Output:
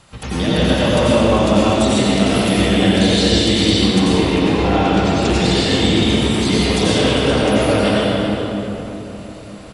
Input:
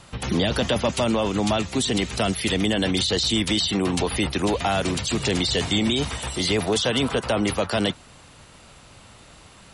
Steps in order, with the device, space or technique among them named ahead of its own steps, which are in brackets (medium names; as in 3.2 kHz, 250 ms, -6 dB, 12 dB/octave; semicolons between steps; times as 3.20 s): 4.07–5.18 s: distance through air 100 m; cave (delay 396 ms -12 dB; reverberation RT60 3.6 s, pre-delay 82 ms, DRR -9 dB); trim -2 dB